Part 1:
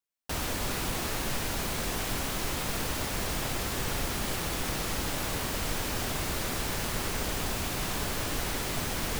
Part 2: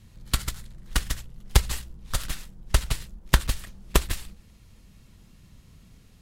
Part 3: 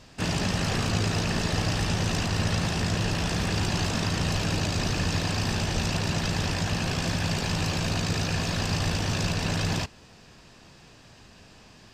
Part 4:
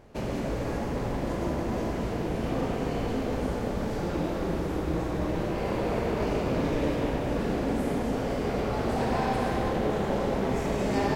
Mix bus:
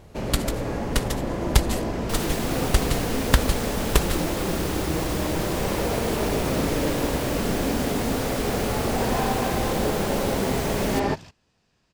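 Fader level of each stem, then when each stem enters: +0.5 dB, +0.5 dB, -17.5 dB, +2.5 dB; 1.80 s, 0.00 s, 1.45 s, 0.00 s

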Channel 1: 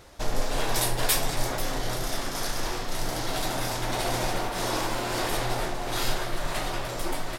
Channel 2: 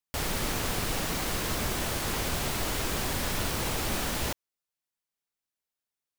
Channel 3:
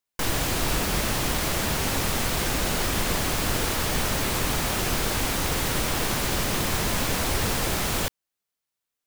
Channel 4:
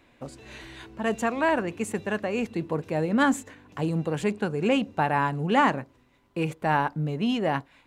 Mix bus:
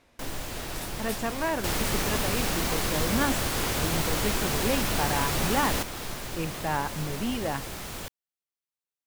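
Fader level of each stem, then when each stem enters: -14.5 dB, +2.0 dB, -11.5 dB, -5.5 dB; 0.00 s, 1.50 s, 0.00 s, 0.00 s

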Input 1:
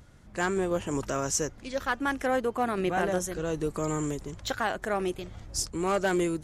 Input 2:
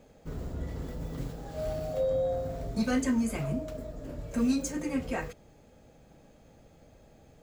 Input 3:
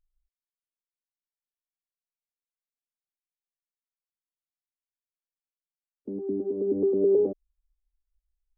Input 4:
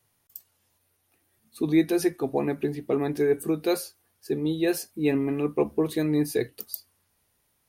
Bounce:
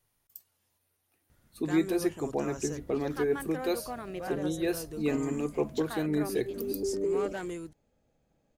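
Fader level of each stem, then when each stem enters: -11.0 dB, -16.0 dB, -8.0 dB, -5.5 dB; 1.30 s, 2.20 s, 0.00 s, 0.00 s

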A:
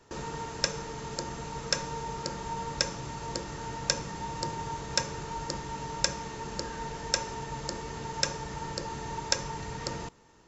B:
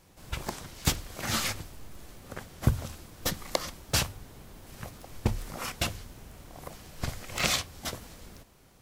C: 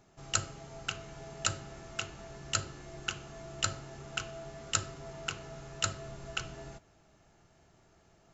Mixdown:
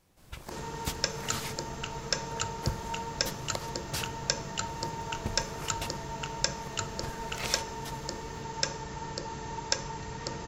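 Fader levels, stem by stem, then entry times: -1.5 dB, -8.5 dB, -3.0 dB; 0.40 s, 0.00 s, 0.95 s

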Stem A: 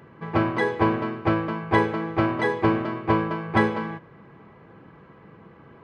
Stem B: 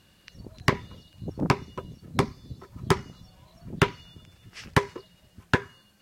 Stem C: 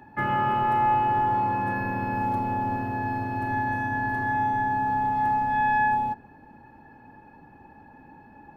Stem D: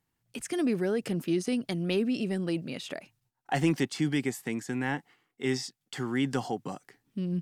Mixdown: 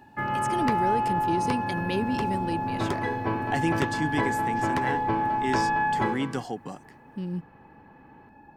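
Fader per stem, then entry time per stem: -8.5 dB, -10.5 dB, -3.0 dB, -1.0 dB; 2.45 s, 0.00 s, 0.00 s, 0.00 s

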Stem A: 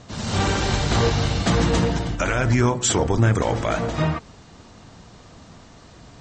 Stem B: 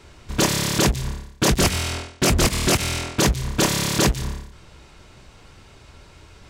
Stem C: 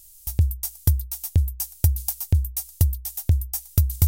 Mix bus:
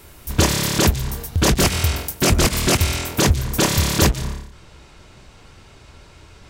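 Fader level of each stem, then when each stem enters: -18.5 dB, +1.5 dB, -2.0 dB; 0.15 s, 0.00 s, 0.00 s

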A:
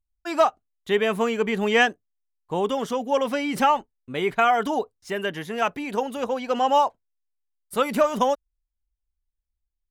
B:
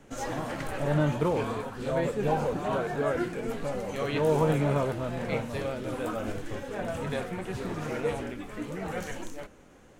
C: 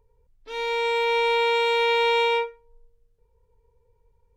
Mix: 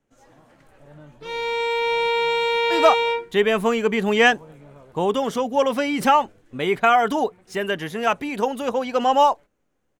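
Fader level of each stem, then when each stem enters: +3.0 dB, -20.0 dB, +0.5 dB; 2.45 s, 0.00 s, 0.75 s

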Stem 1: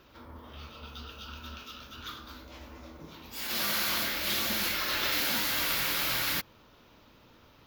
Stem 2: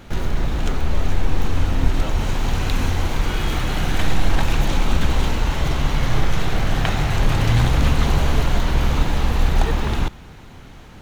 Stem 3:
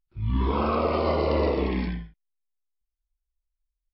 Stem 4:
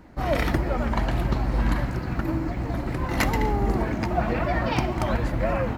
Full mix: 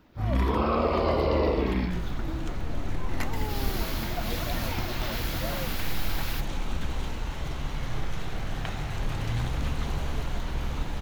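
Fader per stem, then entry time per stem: -8.0 dB, -12.5 dB, -1.0 dB, -10.5 dB; 0.00 s, 1.80 s, 0.00 s, 0.00 s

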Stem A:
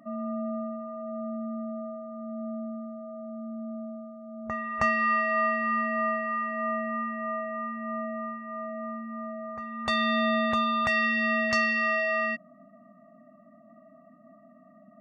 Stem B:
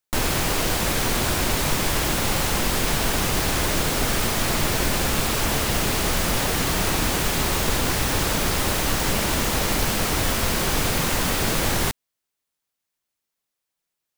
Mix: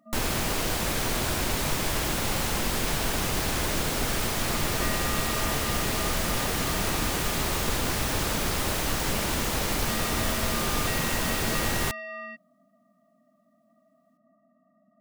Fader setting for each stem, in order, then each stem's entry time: -11.0 dB, -5.0 dB; 0.00 s, 0.00 s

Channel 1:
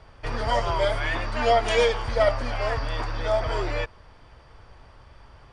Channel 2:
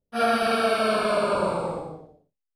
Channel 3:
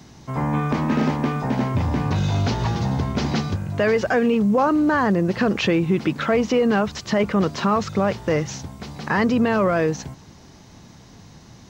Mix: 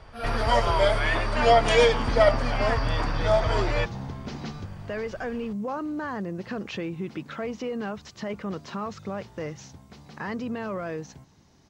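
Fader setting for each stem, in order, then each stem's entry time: +2.0 dB, -12.5 dB, -13.0 dB; 0.00 s, 0.00 s, 1.10 s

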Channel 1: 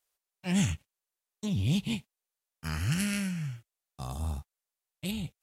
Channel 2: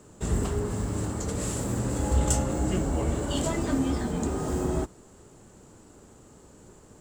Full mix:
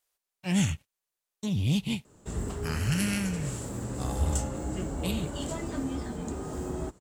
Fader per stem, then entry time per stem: +1.5 dB, -6.5 dB; 0.00 s, 2.05 s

